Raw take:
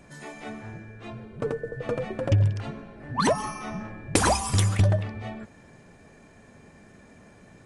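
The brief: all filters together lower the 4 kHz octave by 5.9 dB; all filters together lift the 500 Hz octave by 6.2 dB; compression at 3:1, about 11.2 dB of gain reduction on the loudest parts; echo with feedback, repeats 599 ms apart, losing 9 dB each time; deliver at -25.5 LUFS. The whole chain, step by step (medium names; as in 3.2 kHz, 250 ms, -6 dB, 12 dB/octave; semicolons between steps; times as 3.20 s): peaking EQ 500 Hz +7.5 dB; peaking EQ 4 kHz -8 dB; compression 3:1, threshold -29 dBFS; feedback delay 599 ms, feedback 35%, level -9 dB; trim +7.5 dB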